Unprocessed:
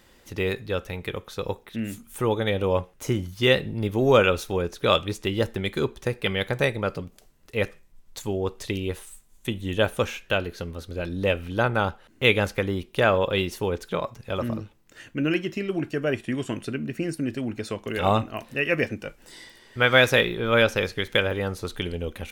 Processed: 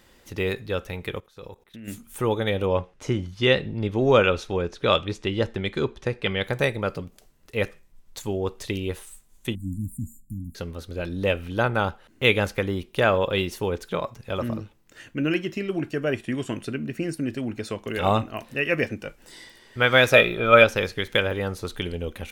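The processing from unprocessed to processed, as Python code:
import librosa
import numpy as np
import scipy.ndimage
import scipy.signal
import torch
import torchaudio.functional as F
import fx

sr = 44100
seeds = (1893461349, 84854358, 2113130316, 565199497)

y = fx.level_steps(x, sr, step_db=20, at=(1.2, 1.88))
y = fx.lowpass(y, sr, hz=5700.0, slope=12, at=(2.66, 6.44))
y = fx.brickwall_bandstop(y, sr, low_hz=300.0, high_hz=6900.0, at=(9.55, 10.55))
y = fx.small_body(y, sr, hz=(630.0, 1300.0, 2400.0), ring_ms=45, db=14, at=(20.11, 20.64))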